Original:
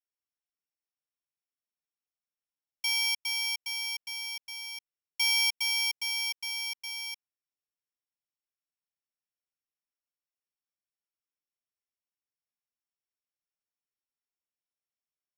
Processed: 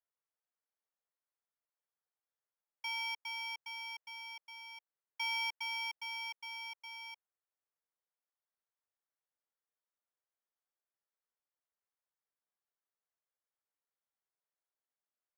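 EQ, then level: polynomial smoothing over 41 samples; steep high-pass 400 Hz; +2.5 dB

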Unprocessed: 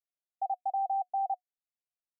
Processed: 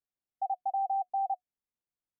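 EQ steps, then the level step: air absorption 460 m; low shelf 500 Hz +7.5 dB; notch 660 Hz, Q 12; 0.0 dB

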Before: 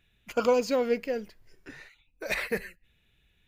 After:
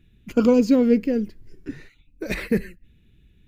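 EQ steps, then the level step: resonant low shelf 450 Hz +13.5 dB, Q 1.5; 0.0 dB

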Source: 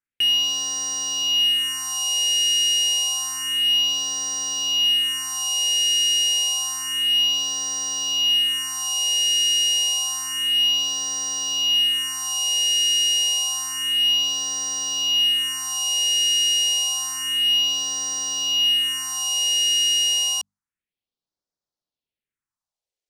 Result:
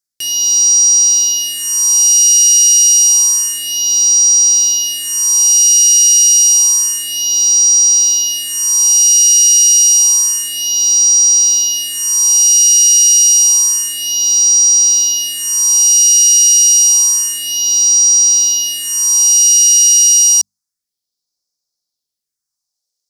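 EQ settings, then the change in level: resonant high shelf 3700 Hz +12 dB, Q 3; 0.0 dB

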